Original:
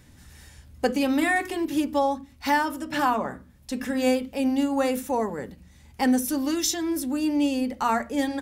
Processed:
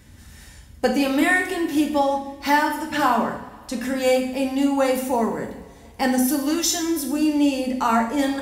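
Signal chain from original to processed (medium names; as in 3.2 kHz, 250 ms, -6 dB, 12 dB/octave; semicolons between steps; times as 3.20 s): two-slope reverb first 0.62 s, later 2.5 s, from -18 dB, DRR 2.5 dB; trim +2.5 dB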